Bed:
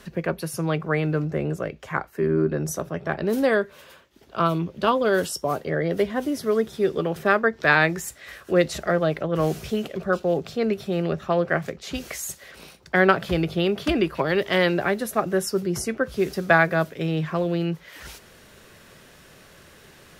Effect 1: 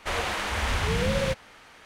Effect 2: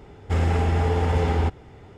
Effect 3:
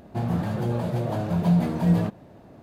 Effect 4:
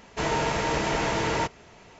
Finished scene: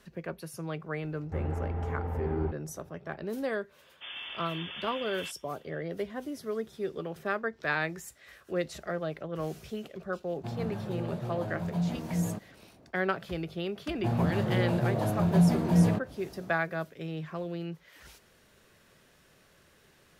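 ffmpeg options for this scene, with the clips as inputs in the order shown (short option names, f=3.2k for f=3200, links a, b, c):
-filter_complex "[3:a]asplit=2[a][b];[0:a]volume=-12dB[c];[2:a]lowpass=1.3k[d];[4:a]lowpass=f=3.1k:t=q:w=0.5098,lowpass=f=3.1k:t=q:w=0.6013,lowpass=f=3.1k:t=q:w=0.9,lowpass=f=3.1k:t=q:w=2.563,afreqshift=-3600[e];[d]atrim=end=1.97,asetpts=PTS-STARTPTS,volume=-12dB,afade=t=in:d=0.004:c=hsin,afade=t=out:st=1.966:d=0.004:c=hsin,adelay=1020[f];[e]atrim=end=1.99,asetpts=PTS-STARTPTS,volume=-15.5dB,afade=t=in:d=0.004:c=hsin,afade=t=out:st=1.986:d=0.004:c=hsin,adelay=3840[g];[a]atrim=end=2.62,asetpts=PTS-STARTPTS,volume=-10dB,afade=t=in:d=0.004:c=hsin,afade=t=out:st=2.616:d=0.004:c=hsin,adelay=10290[h];[b]atrim=end=2.62,asetpts=PTS-STARTPTS,volume=-2dB,afade=t=in:d=0.004:c=hsin,afade=t=out:st=2.616:d=0.004:c=hsin,adelay=13890[i];[c][f][g][h][i]amix=inputs=5:normalize=0"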